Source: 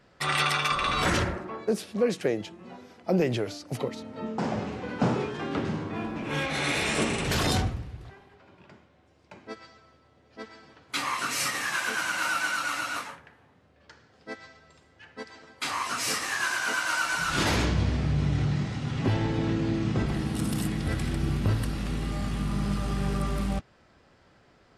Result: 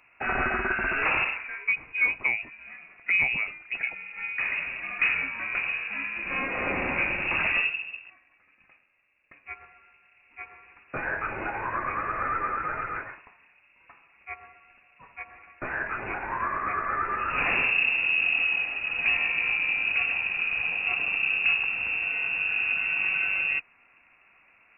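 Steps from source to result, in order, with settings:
0:07.99–0:09.46: mu-law and A-law mismatch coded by A
voice inversion scrambler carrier 2,700 Hz

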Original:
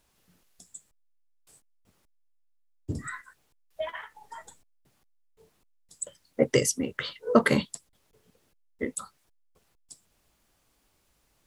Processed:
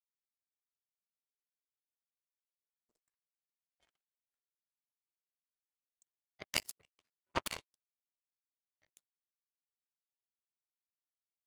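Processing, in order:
gate on every frequency bin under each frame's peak −15 dB weak
power curve on the samples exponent 3
level +9 dB

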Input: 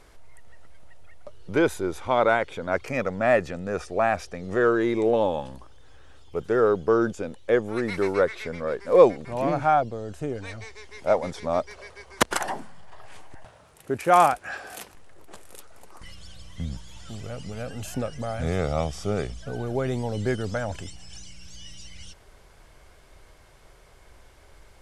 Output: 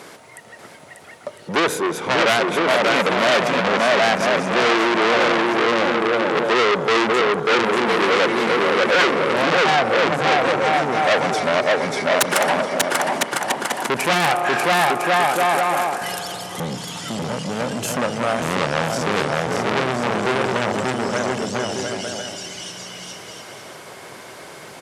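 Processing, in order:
bouncing-ball delay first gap 590 ms, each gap 0.7×, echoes 5
spring reverb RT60 3.1 s, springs 31 ms, chirp 50 ms, DRR 15 dB
in parallel at +0.5 dB: downward compressor, threshold −28 dBFS, peak gain reduction 17.5 dB
on the sum: sine wavefolder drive 15 dB, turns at 1 dBFS
high-pass filter 150 Hz 24 dB per octave
saturating transformer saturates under 2,700 Hz
level −8.5 dB

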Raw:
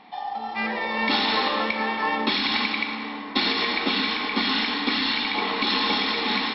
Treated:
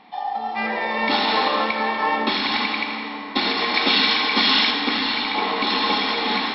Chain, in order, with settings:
0:03.74–0:04.71: high-shelf EQ 2,400 Hz +10 dB
feedback echo with a high-pass in the loop 81 ms, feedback 74%, level −11 dB
dynamic equaliser 690 Hz, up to +5 dB, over −36 dBFS, Q 0.85

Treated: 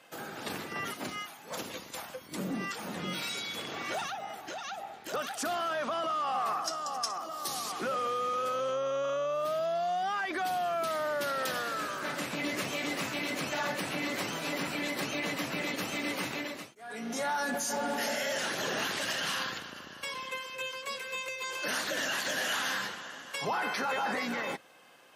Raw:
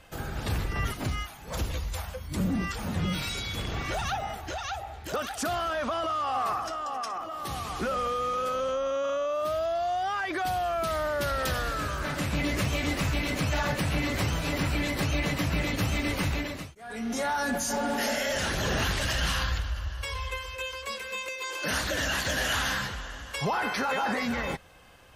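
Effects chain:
sub-octave generator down 2 octaves, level +1 dB
Bessel high-pass filter 280 Hz, order 4
in parallel at −1 dB: brickwall limiter −22.5 dBFS, peak gain reduction 5.5 dB
0:04.05–0:04.78: on the sum: downward compressor 2 to 1, threshold −31 dBFS, peak gain reduction 5.5 dB
0:06.64–0:07.72: high shelf with overshoot 3,700 Hz +8 dB, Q 1.5
level −7.5 dB

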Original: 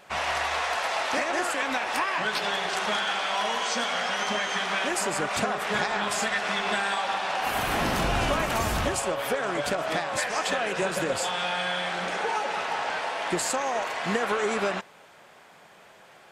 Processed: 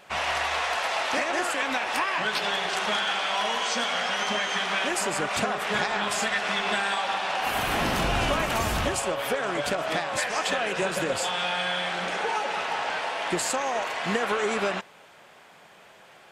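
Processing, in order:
parametric band 2,900 Hz +2.5 dB

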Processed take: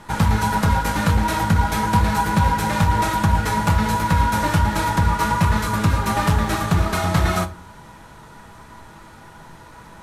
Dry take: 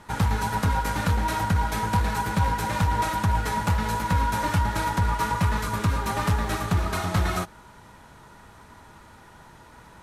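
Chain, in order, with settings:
rectangular room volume 230 cubic metres, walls furnished, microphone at 0.68 metres
level +5 dB

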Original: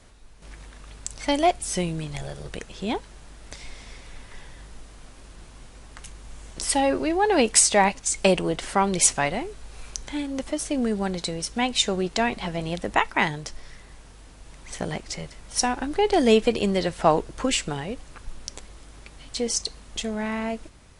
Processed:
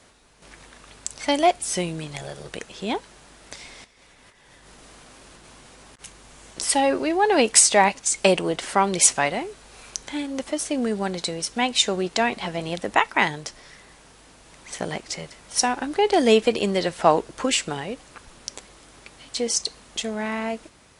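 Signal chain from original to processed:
high-pass filter 240 Hz 6 dB per octave
0:03.84–0:06.04: compressor whose output falls as the input rises −52 dBFS, ratio −0.5
level +2.5 dB

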